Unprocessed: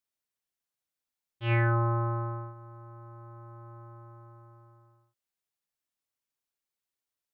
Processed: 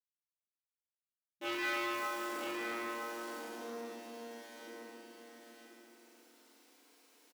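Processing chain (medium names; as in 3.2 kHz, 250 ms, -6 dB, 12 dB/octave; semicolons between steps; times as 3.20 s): send-on-delta sampling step -44.5 dBFS; modulation noise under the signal 23 dB; brick-wall FIR high-pass 200 Hz; hum notches 50/100/150/200/250/300/350 Hz; compression, threshold -35 dBFS, peak gain reduction 8.5 dB; low-pass 2.9 kHz 6 dB/octave; peaking EQ 1.4 kHz -6 dB 2.4 oct; on a send: delay 977 ms -5.5 dB; on the sum: FDN reverb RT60 2.9 s, low-frequency decay 1.3×, high-frequency decay 0.55×, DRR -8.5 dB; transformer saturation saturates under 2.2 kHz; trim +7.5 dB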